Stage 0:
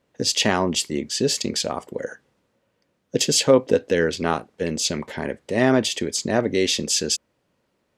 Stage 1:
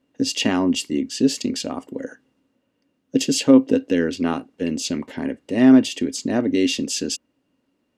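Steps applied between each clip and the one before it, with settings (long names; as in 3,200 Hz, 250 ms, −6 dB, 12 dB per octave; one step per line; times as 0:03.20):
hollow resonant body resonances 270/2,800 Hz, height 16 dB, ringing for 70 ms
level −4.5 dB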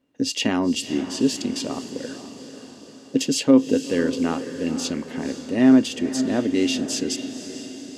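feedback delay with all-pass diffusion 499 ms, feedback 56%, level −11 dB
level −2 dB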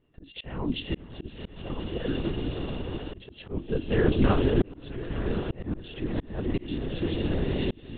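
feedback delay with all-pass diffusion 1,046 ms, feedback 41%, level −8 dB
linear-prediction vocoder at 8 kHz whisper
volume swells 723 ms
level +1.5 dB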